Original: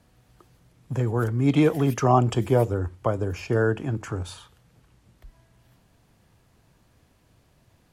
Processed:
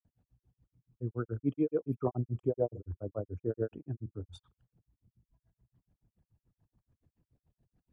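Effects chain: resonances exaggerated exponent 2; granulator 115 ms, grains 7 per s, spray 100 ms, pitch spread up and down by 0 st; trim -8 dB

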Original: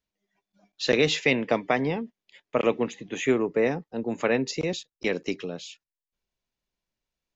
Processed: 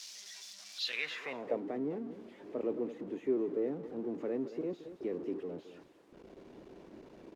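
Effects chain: jump at every zero crossing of -23.5 dBFS; delay 221 ms -13.5 dB; band-pass sweep 5.4 kHz -> 340 Hz, 0.72–1.64 s; trim -8.5 dB

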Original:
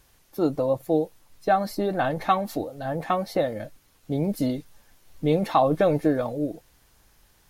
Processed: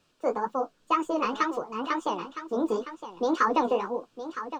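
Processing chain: wide varispeed 1.63×; three-band isolator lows -17 dB, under 170 Hz, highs -24 dB, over 5.6 kHz; flange 2 Hz, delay 9.3 ms, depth 9.6 ms, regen -28%; graphic EQ with 31 bands 315 Hz +3 dB, 800 Hz -8 dB, 2 kHz -11 dB, 8 kHz +5 dB, 12.5 kHz +7 dB; delay 962 ms -11.5 dB; trim +2 dB

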